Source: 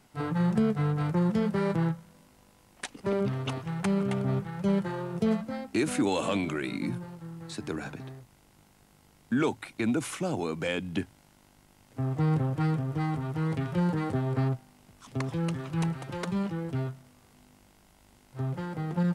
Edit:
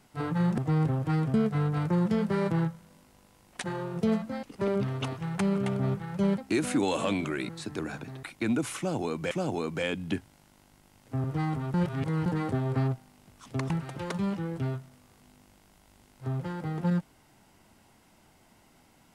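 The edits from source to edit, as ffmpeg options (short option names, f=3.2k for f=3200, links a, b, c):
-filter_complex "[0:a]asplit=13[a][b][c][d][e][f][g][h][i][j][k][l][m];[a]atrim=end=0.582[n];[b]atrim=start=12.088:end=12.852[o];[c]atrim=start=0.578:end=2.882[p];[d]atrim=start=4.828:end=5.622[q];[e]atrim=start=2.878:end=4.832[r];[f]atrim=start=5.618:end=6.732[s];[g]atrim=start=7.408:end=8.152[t];[h]atrim=start=9.608:end=10.692[u];[i]atrim=start=10.158:end=12.092[v];[j]atrim=start=12.848:end=13.352[w];[k]atrim=start=13.348:end=13.872,asetpts=PTS-STARTPTS,areverse[x];[l]atrim=start=13.868:end=15.312[y];[m]atrim=start=15.828[z];[n][o]acrossfade=d=0.004:c1=hsin:c2=hsin[aa];[aa][p]acrossfade=d=0.004:c1=hsin:c2=hsin[ab];[ab][q]acrossfade=d=0.004:c1=hsin:c2=hsin[ac];[ac][r]acrossfade=d=0.004:c1=hsin:c2=hsin[ad];[ad][s]acrossfade=d=0.004:c1=hsin:c2=hsin[ae];[ae][t]acrossfade=d=0.004:c1=hsin:c2=hsin[af];[af][u]acrossfade=d=0.004:c1=hsin:c2=hsin[ag];[ag][v]acrossfade=d=0.004:c1=hsin:c2=hsin[ah];[ah][w]acrossfade=d=0.004:c1=hsin:c2=hsin[ai];[ai][x]acrossfade=d=0.004:c1=hsin:c2=hsin[aj];[aj][y]acrossfade=d=0.004:c1=hsin:c2=hsin[ak];[ak][z]acrossfade=d=0.004:c1=hsin:c2=hsin"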